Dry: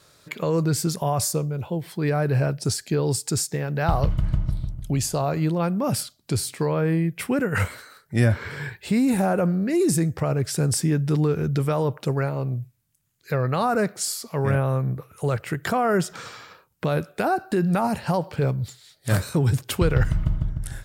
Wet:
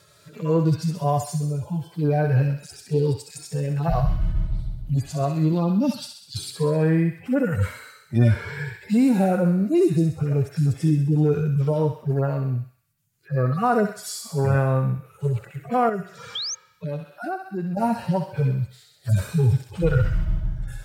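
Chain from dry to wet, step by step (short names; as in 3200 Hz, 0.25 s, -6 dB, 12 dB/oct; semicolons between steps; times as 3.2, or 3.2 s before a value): median-filter separation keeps harmonic; 5.52–6.5 ten-band EQ 125 Hz -6 dB, 250 Hz +8 dB, 500 Hz -7 dB, 2000 Hz -5 dB, 4000 Hz +12 dB; on a send: thinning echo 65 ms, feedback 64%, high-pass 940 Hz, level -6 dB; 16.35–16.55 on the sum: painted sound rise 3100–6700 Hz -25 dBFS; 15.89–17.77 compressor 2:1, threshold -35 dBFS, peak gain reduction 9.5 dB; gain +2.5 dB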